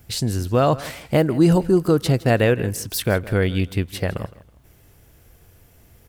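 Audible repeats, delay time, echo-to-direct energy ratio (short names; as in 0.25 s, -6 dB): 2, 0.162 s, -18.0 dB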